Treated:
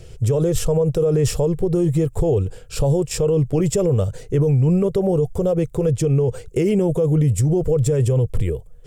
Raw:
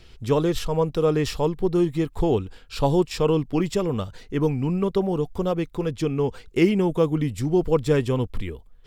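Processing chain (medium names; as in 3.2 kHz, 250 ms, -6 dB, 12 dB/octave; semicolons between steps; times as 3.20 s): graphic EQ 125/250/500/1000/2000/4000/8000 Hz +12/-10/+11/-8/-4/-10/+9 dB; peak limiter -18 dBFS, peak gain reduction 15.5 dB; trim +7 dB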